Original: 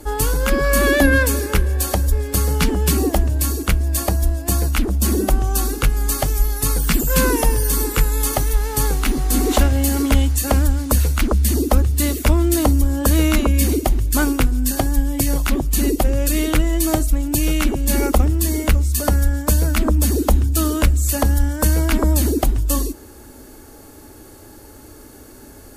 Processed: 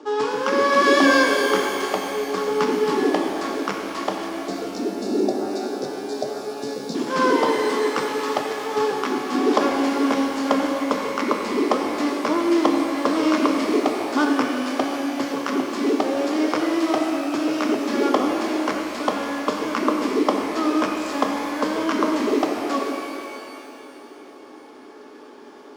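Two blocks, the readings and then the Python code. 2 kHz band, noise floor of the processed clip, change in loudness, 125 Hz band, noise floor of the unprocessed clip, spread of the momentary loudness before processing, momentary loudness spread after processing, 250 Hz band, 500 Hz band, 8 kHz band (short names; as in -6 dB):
-0.5 dB, -43 dBFS, -3.5 dB, -26.5 dB, -42 dBFS, 4 LU, 9 LU, -0.5 dB, +2.0 dB, -14.0 dB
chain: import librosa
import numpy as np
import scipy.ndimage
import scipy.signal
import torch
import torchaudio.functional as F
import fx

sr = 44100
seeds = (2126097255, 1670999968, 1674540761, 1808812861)

y = scipy.signal.medfilt(x, 15)
y = fx.spec_erase(y, sr, start_s=4.27, length_s=2.68, low_hz=760.0, high_hz=3500.0)
y = fx.cabinet(y, sr, low_hz=250.0, low_slope=24, high_hz=7000.0, hz=(420.0, 600.0, 1100.0, 3200.0, 5300.0), db=(3, -4, 8, 5, 7))
y = fx.rev_shimmer(y, sr, seeds[0], rt60_s=2.5, semitones=12, shimmer_db=-8, drr_db=1.5)
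y = y * 10.0 ** (-1.0 / 20.0)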